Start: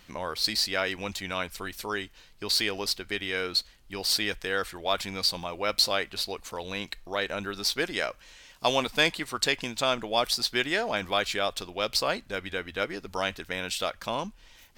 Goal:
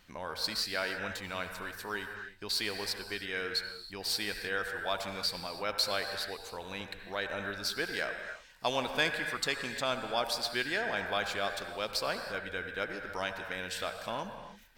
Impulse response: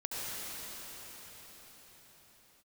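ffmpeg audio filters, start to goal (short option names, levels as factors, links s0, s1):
-filter_complex "[0:a]asplit=2[s0][s1];[s1]equalizer=f=315:t=o:w=0.33:g=-7,equalizer=f=800:t=o:w=0.33:g=3,equalizer=f=1600:t=o:w=0.33:g=11,equalizer=f=3150:t=o:w=0.33:g=-6,equalizer=f=6300:t=o:w=0.33:g=-11[s2];[1:a]atrim=start_sample=2205,afade=t=out:st=0.38:d=0.01,atrim=end_sample=17199[s3];[s2][s3]afir=irnorm=-1:irlink=0,volume=0.501[s4];[s0][s4]amix=inputs=2:normalize=0,volume=0.355"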